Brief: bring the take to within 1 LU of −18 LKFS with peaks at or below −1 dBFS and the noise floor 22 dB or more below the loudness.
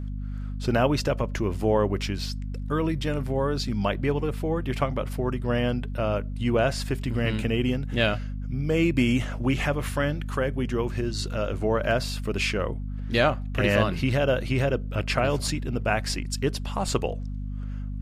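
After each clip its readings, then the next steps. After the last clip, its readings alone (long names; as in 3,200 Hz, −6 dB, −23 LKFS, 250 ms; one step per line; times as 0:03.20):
mains hum 50 Hz; hum harmonics up to 250 Hz; level of the hum −29 dBFS; integrated loudness −26.5 LKFS; sample peak −8.0 dBFS; target loudness −18.0 LKFS
→ mains-hum notches 50/100/150/200/250 Hz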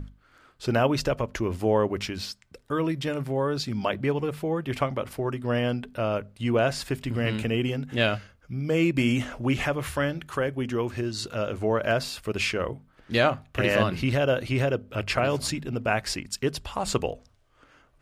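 mains hum none found; integrated loudness −27.0 LKFS; sample peak −8.0 dBFS; target loudness −18.0 LKFS
→ level +9 dB
brickwall limiter −1 dBFS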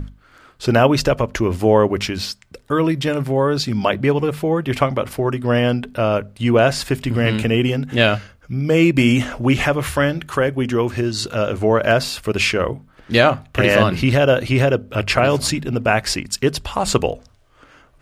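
integrated loudness −18.0 LKFS; sample peak −1.0 dBFS; background noise floor −52 dBFS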